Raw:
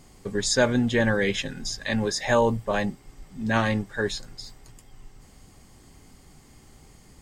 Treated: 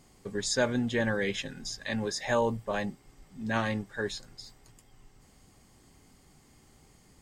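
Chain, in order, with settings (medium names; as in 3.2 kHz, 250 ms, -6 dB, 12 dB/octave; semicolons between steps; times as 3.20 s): bass shelf 67 Hz -6 dB; trim -6 dB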